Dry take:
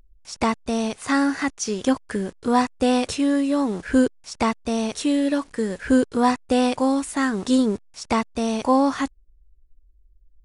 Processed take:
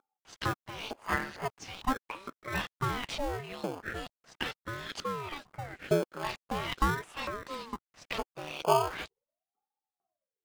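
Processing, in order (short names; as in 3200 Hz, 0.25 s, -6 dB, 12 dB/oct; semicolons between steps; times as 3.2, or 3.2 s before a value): dynamic EQ 2600 Hz, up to +3 dB, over -43 dBFS, Q 2.6; LFO band-pass saw up 2.2 Hz 540–3900 Hz; in parallel at -5.5 dB: sample-and-hold 23×; on the sum: ring modulator with a swept carrier 450 Hz, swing 85%, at 0.41 Hz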